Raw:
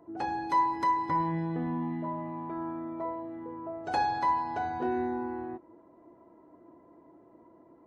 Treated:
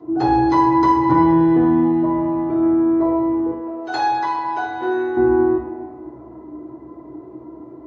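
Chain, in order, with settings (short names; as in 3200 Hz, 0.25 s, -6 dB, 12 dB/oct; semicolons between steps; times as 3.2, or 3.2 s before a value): 3.51–5.17 HPF 1400 Hz 6 dB/oct; reverb RT60 1.6 s, pre-delay 3 ms, DRR -8.5 dB; gain -4 dB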